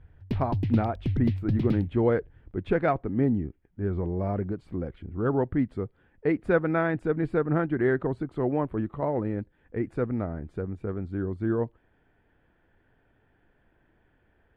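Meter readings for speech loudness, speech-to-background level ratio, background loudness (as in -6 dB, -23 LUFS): -28.5 LUFS, 2.0 dB, -30.5 LUFS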